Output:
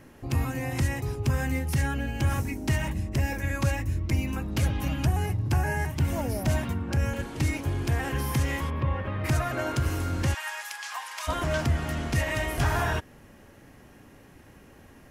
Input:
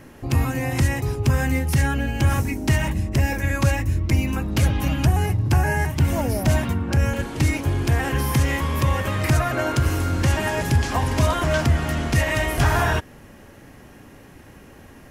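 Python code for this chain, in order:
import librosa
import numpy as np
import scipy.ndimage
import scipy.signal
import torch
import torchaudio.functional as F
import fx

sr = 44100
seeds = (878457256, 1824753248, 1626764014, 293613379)

y = fx.air_absorb(x, sr, metres=420.0, at=(8.69, 9.24), fade=0.02)
y = fx.highpass(y, sr, hz=980.0, slope=24, at=(10.33, 11.27), fade=0.02)
y = y * 10.0 ** (-6.5 / 20.0)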